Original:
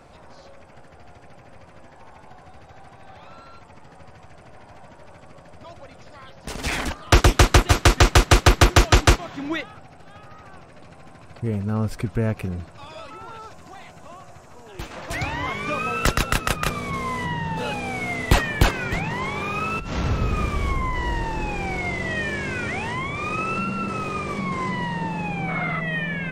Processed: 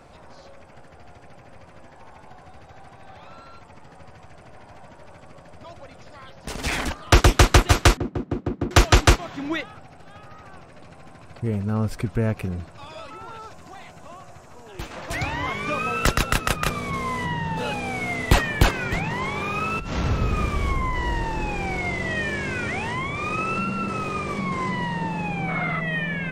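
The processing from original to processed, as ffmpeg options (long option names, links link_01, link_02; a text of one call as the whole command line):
ffmpeg -i in.wav -filter_complex "[0:a]asettb=1/sr,asplit=3[link_01][link_02][link_03];[link_01]atrim=end=7.974[link_04];[link_02]atrim=start=7.97:end=8.71,asetpts=PTS-STARTPTS,afade=type=in:duration=0.004:curve=qsin,afade=type=out:start_time=0.736:duration=0.004:curve=qsin,bandpass=frequency=230:width_type=q:width=2.2[link_05];[link_03]atrim=start=8.706[link_06];[link_04][link_05]acrossfade=duration=0.004:curve1=hsin:curve2=qsin[link_07];[link_07][link_06]acrossfade=duration=0.004:curve1=qsin:curve2=hsin" out.wav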